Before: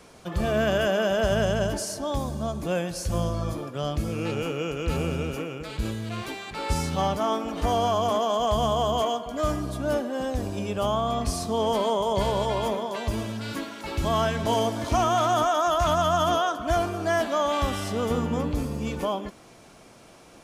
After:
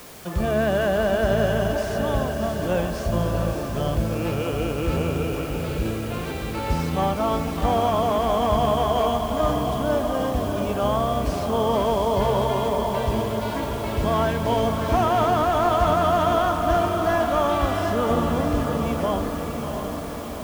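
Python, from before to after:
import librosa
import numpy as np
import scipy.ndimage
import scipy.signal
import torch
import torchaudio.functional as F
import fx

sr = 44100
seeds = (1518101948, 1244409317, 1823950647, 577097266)

y = fx.delta_mod(x, sr, bps=64000, step_db=-40.0)
y = fx.lowpass(y, sr, hz=2600.0, slope=6)
y = fx.echo_diffused(y, sr, ms=667, feedback_pct=63, wet_db=-5.5)
y = fx.quant_dither(y, sr, seeds[0], bits=8, dither='triangular')
y = F.gain(torch.from_numpy(y), 2.5).numpy()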